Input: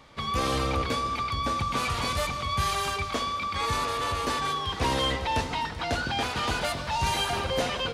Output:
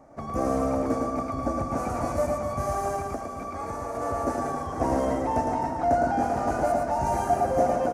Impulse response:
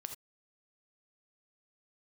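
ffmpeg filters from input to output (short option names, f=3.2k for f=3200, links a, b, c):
-filter_complex "[0:a]firequalizer=gain_entry='entry(110,0);entry(210,5);entry(300,11);entry(440,2);entry(680,15);entry(1000,-3);entry(1400,-2);entry(3400,-27);entry(5900,-4)':delay=0.05:min_phase=1,asettb=1/sr,asplit=3[a][b][c];[a]atrim=end=3.014[d];[b]atrim=start=3.01:end=3.95,asetpts=PTS-STARTPTS,afade=t=in:d=0.004:c=qsin,afade=t=out:st=0.936:d=0.004:c=qsin,acompressor=threshold=-28dB:ratio=6[e];[c]atrim=start=3.946[f];[d][e]acrossfade=d=0.004:c1=hsin:c2=qsin[g];[g][f]acrossfade=d=0.004:c1=qsin:c2=hsin,aecho=1:1:110|264|479.6|781.4|1204:0.631|0.398|0.251|0.158|0.1,volume=-3.5dB"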